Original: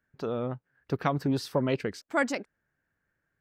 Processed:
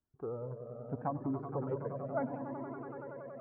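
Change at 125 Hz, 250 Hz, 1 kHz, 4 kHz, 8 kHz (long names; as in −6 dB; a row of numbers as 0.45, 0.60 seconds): −7.0 dB, −8.0 dB, −7.0 dB, below −40 dB, below −35 dB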